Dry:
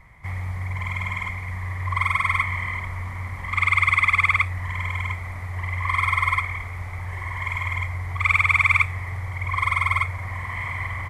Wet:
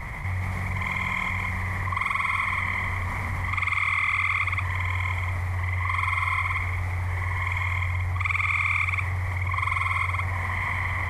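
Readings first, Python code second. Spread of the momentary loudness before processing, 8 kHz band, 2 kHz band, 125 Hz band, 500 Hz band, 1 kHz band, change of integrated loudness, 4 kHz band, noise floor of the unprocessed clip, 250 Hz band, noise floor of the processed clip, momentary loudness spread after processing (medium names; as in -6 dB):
14 LU, -1.5 dB, -3.0 dB, 0.0 dB, +1.5 dB, -2.5 dB, -2.5 dB, -2.5 dB, -33 dBFS, +2.5 dB, -30 dBFS, 6 LU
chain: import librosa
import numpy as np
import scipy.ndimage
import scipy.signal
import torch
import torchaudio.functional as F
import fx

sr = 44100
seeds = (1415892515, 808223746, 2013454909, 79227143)

y = x + 10.0 ** (-5.0 / 20.0) * np.pad(x, (int(179 * sr / 1000.0), 0))[:len(x)]
y = fx.env_flatten(y, sr, amount_pct=70)
y = y * 10.0 ** (-8.0 / 20.0)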